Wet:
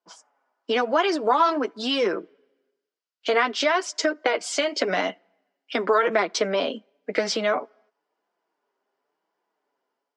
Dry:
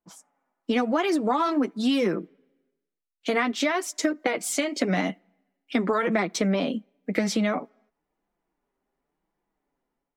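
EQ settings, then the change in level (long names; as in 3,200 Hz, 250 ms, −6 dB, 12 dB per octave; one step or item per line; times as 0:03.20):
loudspeaker in its box 360–7,400 Hz, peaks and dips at 430 Hz +6 dB, 630 Hz +5 dB, 1,000 Hz +6 dB, 1,500 Hz +7 dB, 3,000 Hz +6 dB, 4,900 Hz +8 dB
0.0 dB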